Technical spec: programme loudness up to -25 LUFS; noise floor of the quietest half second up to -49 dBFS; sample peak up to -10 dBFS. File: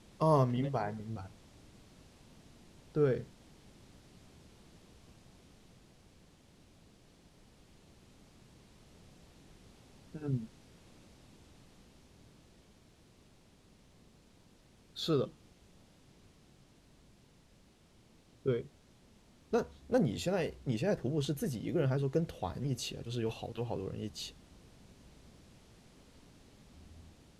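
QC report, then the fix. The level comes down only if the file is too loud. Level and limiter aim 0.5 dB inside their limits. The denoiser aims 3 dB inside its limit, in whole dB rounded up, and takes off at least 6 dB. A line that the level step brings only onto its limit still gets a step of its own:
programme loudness -35.0 LUFS: pass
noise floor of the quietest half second -64 dBFS: pass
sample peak -15.5 dBFS: pass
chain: none needed

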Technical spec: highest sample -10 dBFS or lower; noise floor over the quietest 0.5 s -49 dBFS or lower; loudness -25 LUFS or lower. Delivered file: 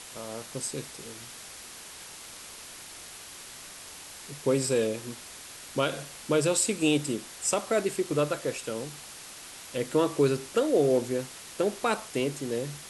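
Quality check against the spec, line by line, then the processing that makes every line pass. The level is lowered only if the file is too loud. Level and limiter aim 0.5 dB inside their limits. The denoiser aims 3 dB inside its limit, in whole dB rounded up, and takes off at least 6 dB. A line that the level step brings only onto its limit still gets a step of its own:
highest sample -12.0 dBFS: pass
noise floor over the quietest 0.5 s -45 dBFS: fail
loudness -28.5 LUFS: pass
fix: noise reduction 7 dB, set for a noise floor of -45 dBFS

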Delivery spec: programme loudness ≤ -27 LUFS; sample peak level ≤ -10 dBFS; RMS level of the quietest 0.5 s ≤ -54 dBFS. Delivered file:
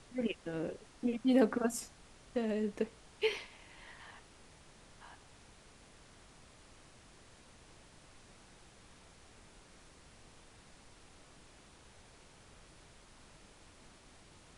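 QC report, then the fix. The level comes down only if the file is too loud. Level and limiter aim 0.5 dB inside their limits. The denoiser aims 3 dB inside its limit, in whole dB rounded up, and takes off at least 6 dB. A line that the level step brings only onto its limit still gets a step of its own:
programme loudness -35.5 LUFS: pass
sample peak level -17.0 dBFS: pass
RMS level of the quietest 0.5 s -59 dBFS: pass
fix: none needed

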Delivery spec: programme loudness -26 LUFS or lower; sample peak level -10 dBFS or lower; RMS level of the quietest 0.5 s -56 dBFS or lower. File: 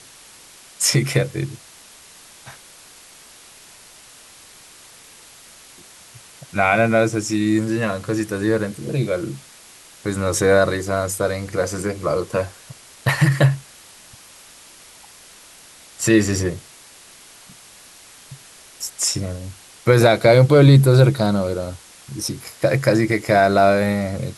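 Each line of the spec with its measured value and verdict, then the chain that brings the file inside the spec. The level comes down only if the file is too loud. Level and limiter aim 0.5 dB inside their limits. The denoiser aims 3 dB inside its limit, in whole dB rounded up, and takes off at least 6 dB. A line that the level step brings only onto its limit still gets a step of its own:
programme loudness -18.5 LUFS: fail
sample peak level -2.0 dBFS: fail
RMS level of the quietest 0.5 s -45 dBFS: fail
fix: noise reduction 6 dB, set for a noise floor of -45 dBFS; trim -8 dB; peak limiter -10.5 dBFS

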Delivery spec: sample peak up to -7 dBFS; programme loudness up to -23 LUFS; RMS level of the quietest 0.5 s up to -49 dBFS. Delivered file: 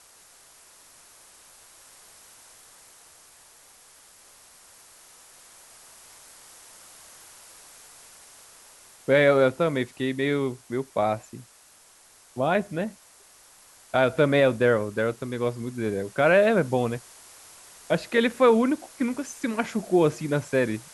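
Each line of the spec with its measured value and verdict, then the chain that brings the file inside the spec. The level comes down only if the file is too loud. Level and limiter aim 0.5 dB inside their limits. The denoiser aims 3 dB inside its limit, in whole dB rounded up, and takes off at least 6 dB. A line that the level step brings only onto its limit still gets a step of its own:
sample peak -8.0 dBFS: pass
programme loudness -24.0 LUFS: pass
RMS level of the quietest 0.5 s -55 dBFS: pass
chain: none needed

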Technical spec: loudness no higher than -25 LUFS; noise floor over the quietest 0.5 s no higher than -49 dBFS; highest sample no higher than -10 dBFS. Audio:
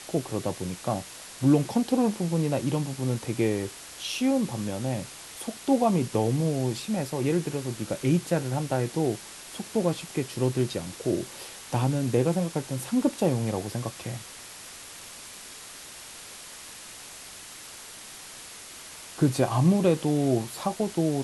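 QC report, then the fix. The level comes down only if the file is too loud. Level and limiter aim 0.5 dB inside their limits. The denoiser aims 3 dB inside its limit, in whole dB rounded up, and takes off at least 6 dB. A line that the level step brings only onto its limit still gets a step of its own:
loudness -27.5 LUFS: pass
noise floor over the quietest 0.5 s -44 dBFS: fail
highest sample -9.5 dBFS: fail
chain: noise reduction 8 dB, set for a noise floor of -44 dBFS; peak limiter -10.5 dBFS

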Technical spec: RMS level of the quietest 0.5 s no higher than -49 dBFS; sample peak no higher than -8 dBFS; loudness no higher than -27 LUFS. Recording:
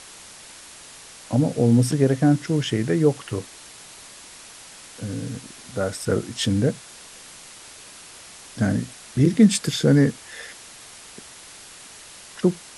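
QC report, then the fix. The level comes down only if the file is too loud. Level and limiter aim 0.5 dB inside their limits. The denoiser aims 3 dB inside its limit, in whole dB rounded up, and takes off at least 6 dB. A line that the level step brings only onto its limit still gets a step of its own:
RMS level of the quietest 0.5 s -44 dBFS: fail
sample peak -4.0 dBFS: fail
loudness -21.5 LUFS: fail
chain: trim -6 dB

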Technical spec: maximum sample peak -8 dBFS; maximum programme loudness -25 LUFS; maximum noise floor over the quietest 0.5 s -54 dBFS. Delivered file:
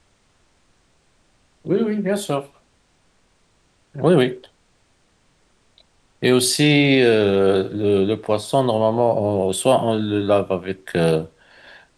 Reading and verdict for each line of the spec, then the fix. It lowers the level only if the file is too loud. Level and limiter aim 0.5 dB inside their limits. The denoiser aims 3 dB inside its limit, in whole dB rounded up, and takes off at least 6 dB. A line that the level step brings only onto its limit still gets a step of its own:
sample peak -2.5 dBFS: fail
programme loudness -18.5 LUFS: fail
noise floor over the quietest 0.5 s -61 dBFS: pass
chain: trim -7 dB

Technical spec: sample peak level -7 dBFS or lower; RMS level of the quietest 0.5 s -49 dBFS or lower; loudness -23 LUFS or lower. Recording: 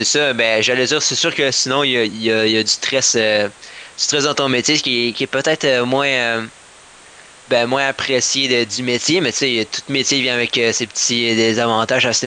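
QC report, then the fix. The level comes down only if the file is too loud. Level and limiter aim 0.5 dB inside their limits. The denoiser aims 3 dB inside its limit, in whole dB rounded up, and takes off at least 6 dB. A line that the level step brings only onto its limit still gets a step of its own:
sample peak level -3.5 dBFS: fail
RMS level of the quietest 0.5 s -43 dBFS: fail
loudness -15.5 LUFS: fail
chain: trim -8 dB

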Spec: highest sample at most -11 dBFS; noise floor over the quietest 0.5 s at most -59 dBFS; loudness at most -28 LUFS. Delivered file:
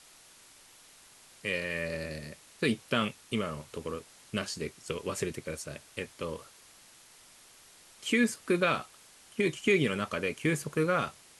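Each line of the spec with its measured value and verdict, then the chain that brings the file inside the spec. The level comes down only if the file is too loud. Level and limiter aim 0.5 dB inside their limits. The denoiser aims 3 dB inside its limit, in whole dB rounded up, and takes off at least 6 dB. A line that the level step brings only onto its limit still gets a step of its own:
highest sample -13.5 dBFS: pass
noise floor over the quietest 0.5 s -57 dBFS: fail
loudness -32.0 LUFS: pass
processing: noise reduction 6 dB, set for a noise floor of -57 dBFS

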